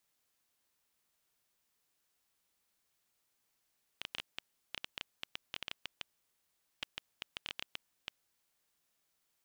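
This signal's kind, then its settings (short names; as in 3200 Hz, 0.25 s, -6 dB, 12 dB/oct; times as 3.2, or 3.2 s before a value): random clicks 7.4/s -21 dBFS 4.31 s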